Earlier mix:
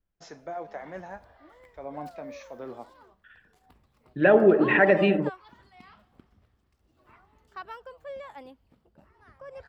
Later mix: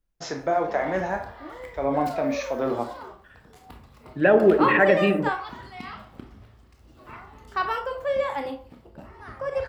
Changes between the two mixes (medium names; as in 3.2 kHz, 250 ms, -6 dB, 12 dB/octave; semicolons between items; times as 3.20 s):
first voice +10.0 dB; background +10.5 dB; reverb: on, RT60 0.40 s